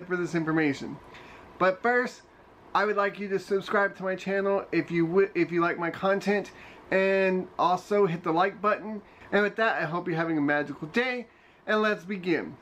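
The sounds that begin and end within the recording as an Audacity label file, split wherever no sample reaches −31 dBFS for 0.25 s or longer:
1.600000	2.090000	sound
2.750000	6.430000	sound
6.920000	8.970000	sound
9.330000	11.200000	sound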